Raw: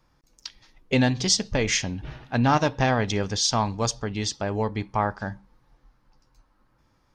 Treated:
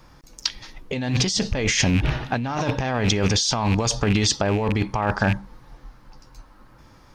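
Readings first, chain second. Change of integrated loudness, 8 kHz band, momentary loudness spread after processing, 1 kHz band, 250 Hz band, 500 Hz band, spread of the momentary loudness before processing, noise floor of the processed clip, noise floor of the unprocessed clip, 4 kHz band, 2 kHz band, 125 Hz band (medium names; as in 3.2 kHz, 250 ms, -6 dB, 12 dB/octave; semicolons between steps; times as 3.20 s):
+2.0 dB, +2.5 dB, 9 LU, -0.5 dB, +2.5 dB, +1.5 dB, 14 LU, -51 dBFS, -66 dBFS, +3.5 dB, +3.0 dB, +4.5 dB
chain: rattle on loud lows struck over -32 dBFS, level -30 dBFS; in parallel at -1 dB: peak limiter -20 dBFS, peak gain reduction 11.5 dB; on the sum: compressor with a negative ratio -26 dBFS, ratio -1; trim +4.5 dB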